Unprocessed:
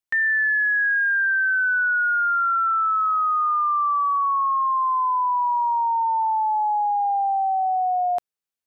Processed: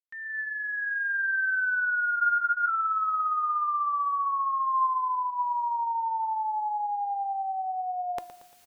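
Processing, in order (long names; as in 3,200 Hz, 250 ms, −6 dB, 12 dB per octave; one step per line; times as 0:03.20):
fade in at the beginning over 1.38 s
parametric band 630 Hz −7 dB 0.59 octaves
reversed playback
upward compression, threshold −26 dBFS
reversed playback
tuned comb filter 350 Hz, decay 0.26 s, harmonics all, mix 50%
hum removal 330 Hz, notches 3
on a send: repeating echo 115 ms, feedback 48%, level −14 dB
on the sum: frozen spectrum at 0:02.18, 0.51 s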